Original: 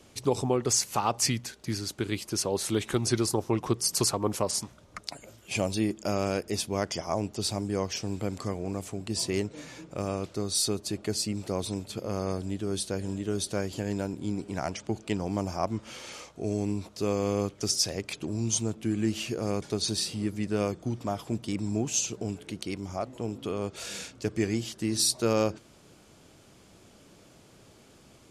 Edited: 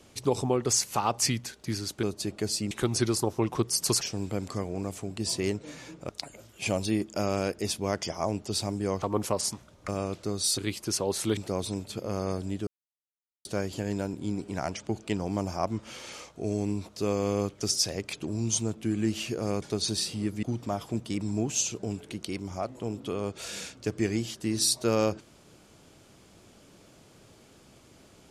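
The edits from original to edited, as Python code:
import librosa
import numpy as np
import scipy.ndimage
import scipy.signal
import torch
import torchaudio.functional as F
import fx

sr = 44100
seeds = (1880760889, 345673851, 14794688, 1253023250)

y = fx.edit(x, sr, fx.swap(start_s=2.03, length_s=0.79, other_s=10.69, other_length_s=0.68),
    fx.swap(start_s=4.12, length_s=0.86, other_s=7.91, other_length_s=2.08),
    fx.silence(start_s=12.67, length_s=0.78),
    fx.cut(start_s=20.43, length_s=0.38), tone=tone)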